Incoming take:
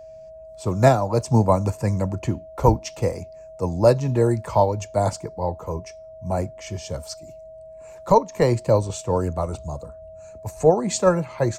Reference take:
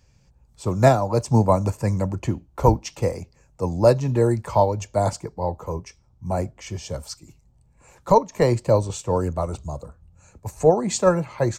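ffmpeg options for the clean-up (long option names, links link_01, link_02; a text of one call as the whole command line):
ffmpeg -i in.wav -af "bandreject=frequency=640:width=30" out.wav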